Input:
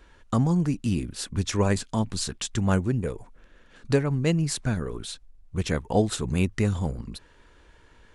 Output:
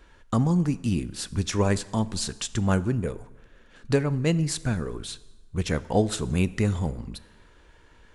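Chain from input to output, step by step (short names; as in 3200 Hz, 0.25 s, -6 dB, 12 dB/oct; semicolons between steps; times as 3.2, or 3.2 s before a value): plate-style reverb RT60 1.2 s, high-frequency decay 0.8×, DRR 16 dB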